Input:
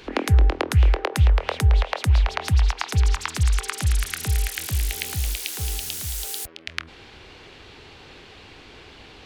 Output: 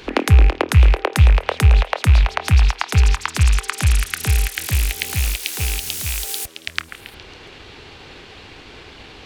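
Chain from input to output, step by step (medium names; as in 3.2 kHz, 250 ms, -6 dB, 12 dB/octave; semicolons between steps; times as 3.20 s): rattle on loud lows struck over -29 dBFS, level -21 dBFS; repeats whose band climbs or falls 138 ms, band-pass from 1.6 kHz, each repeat 0.7 oct, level -9.5 dB; transient shaper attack +1 dB, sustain -5 dB; trim +5 dB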